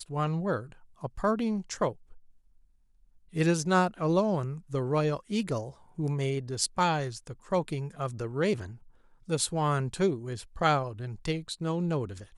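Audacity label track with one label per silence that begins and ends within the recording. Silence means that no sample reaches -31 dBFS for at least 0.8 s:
1.890000	3.360000	silence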